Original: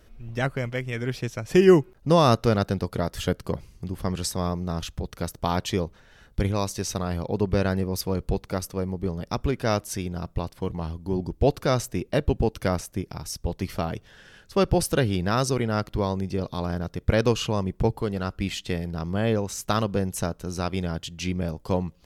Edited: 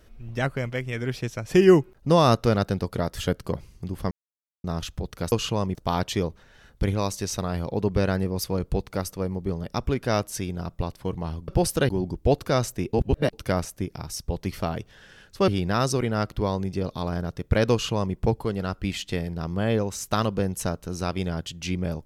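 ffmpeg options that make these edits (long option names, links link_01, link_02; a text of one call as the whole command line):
ffmpeg -i in.wav -filter_complex "[0:a]asplit=10[link_01][link_02][link_03][link_04][link_05][link_06][link_07][link_08][link_09][link_10];[link_01]atrim=end=4.11,asetpts=PTS-STARTPTS,afade=type=out:start_time=4.106:duration=0.004:curve=hsin[link_11];[link_02]atrim=start=4.11:end=4.64,asetpts=PTS-STARTPTS,volume=0[link_12];[link_03]atrim=start=4.64:end=5.322,asetpts=PTS-STARTPTS,afade=type=in:duration=0.004:curve=hsin[link_13];[link_04]atrim=start=17.288:end=17.722[link_14];[link_05]atrim=start=5.318:end=11.052[link_15];[link_06]atrim=start=14.638:end=15.052[link_16];[link_07]atrim=start=11.048:end=12.092[link_17];[link_08]atrim=start=12.088:end=12.492,asetpts=PTS-STARTPTS,areverse[link_18];[link_09]atrim=start=12.488:end=14.642[link_19];[link_10]atrim=start=15.048[link_20];[link_11][link_12][link_13]concat=n=3:v=0:a=1[link_21];[link_21][link_14]acrossfade=duration=0.004:curve1=hsin:curve2=hsin[link_22];[link_22][link_15]acrossfade=duration=0.004:curve1=hsin:curve2=hsin[link_23];[link_23][link_16]acrossfade=duration=0.004:curve1=hsin:curve2=hsin[link_24];[link_24][link_17]acrossfade=duration=0.004:curve1=hsin:curve2=hsin[link_25];[link_25][link_18]acrossfade=duration=0.004:curve1=hsin:curve2=hsin[link_26];[link_26][link_19]acrossfade=duration=0.004:curve1=hsin:curve2=hsin[link_27];[link_27][link_20]acrossfade=duration=0.004:curve1=hsin:curve2=hsin" out.wav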